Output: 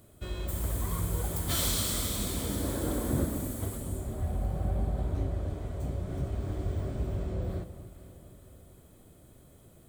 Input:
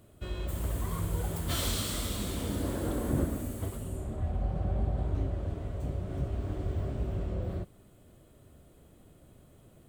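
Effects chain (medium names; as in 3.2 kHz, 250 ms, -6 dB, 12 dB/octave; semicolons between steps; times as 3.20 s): treble shelf 5.3 kHz +7 dB; band-stop 2.8 kHz, Q 12; on a send: echo whose repeats swap between lows and highs 232 ms, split 1.2 kHz, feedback 70%, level -11.5 dB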